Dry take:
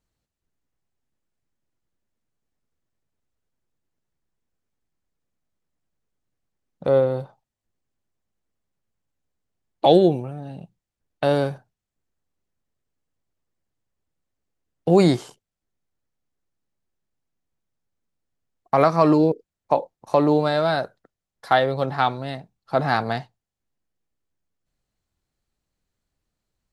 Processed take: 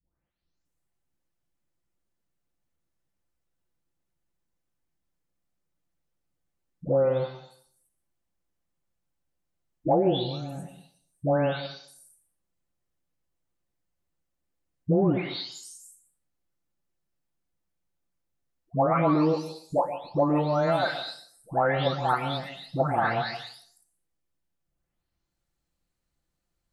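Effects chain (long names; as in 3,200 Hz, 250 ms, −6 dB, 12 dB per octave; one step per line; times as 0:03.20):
every frequency bin delayed by itself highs late, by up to 651 ms
downward compressor, threshold −19 dBFS, peak gain reduction 9 dB
on a send: convolution reverb RT60 0.55 s, pre-delay 107 ms, DRR 11 dB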